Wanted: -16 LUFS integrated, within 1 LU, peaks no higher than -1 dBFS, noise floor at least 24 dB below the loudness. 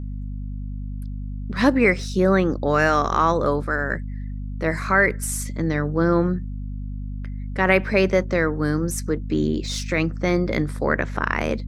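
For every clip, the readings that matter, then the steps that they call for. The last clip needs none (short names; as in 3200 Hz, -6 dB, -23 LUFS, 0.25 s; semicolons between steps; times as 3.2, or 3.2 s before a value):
hum 50 Hz; harmonics up to 250 Hz; hum level -27 dBFS; loudness -21.5 LUFS; peak -3.5 dBFS; loudness target -16.0 LUFS
-> de-hum 50 Hz, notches 5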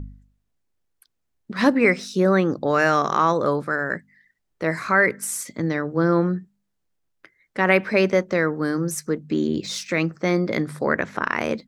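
hum none; loudness -22.0 LUFS; peak -4.5 dBFS; loudness target -16.0 LUFS
-> gain +6 dB; limiter -1 dBFS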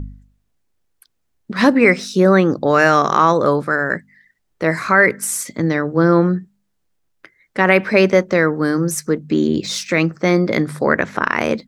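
loudness -16.0 LUFS; peak -1.0 dBFS; noise floor -69 dBFS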